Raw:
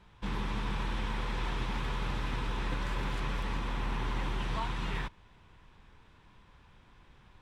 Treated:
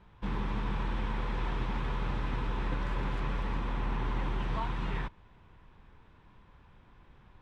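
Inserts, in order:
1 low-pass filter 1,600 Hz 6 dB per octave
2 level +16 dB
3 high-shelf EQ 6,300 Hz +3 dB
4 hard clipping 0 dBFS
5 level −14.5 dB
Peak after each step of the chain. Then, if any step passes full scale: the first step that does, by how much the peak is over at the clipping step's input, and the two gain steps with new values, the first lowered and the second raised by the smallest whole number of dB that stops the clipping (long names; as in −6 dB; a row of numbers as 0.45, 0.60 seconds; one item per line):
−22.0, −6.0, −6.0, −6.0, −20.5 dBFS
no step passes full scale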